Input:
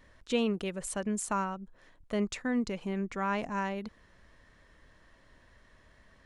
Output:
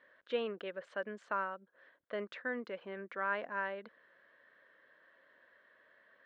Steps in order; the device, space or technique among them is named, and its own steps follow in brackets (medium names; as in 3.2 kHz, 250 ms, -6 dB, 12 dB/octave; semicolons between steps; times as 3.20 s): phone earpiece (cabinet simulation 440–3300 Hz, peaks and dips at 540 Hz +6 dB, 830 Hz -6 dB, 1.6 kHz +8 dB, 2.5 kHz -5 dB); trim -4 dB